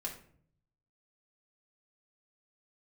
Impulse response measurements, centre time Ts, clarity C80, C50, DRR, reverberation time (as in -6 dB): 19 ms, 12.5 dB, 8.5 dB, -3.0 dB, 0.55 s